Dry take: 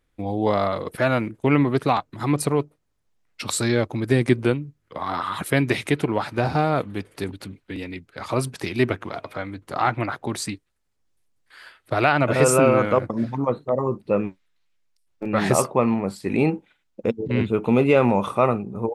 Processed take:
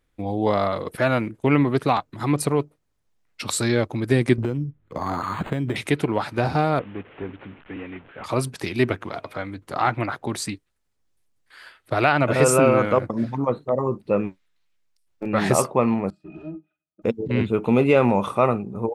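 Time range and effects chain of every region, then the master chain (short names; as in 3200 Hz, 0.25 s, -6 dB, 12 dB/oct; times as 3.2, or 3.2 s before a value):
4.38–5.76 low shelf 430 Hz +9 dB + compressor 8:1, threshold -20 dBFS + decimation joined by straight lines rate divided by 8×
6.79–8.24 delta modulation 16 kbps, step -41 dBFS + low shelf 190 Hz -7 dB
16.1–17.02 HPF 150 Hz + overloaded stage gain 27.5 dB + octave resonator D#, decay 0.11 s
whole clip: dry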